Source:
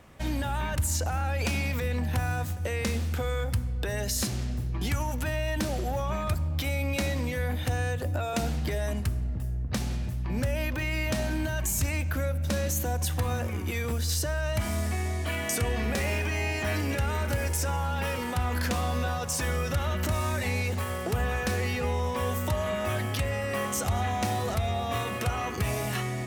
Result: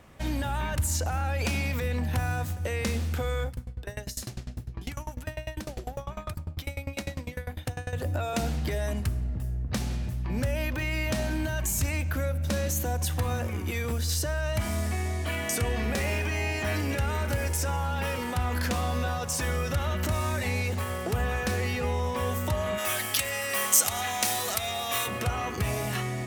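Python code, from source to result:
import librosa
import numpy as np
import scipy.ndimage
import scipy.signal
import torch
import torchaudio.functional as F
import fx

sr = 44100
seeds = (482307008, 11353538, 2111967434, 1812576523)

y = fx.tremolo_decay(x, sr, direction='decaying', hz=10.0, depth_db=23, at=(3.47, 7.93))
y = fx.tilt_eq(y, sr, slope=4.0, at=(22.77, 25.06), fade=0.02)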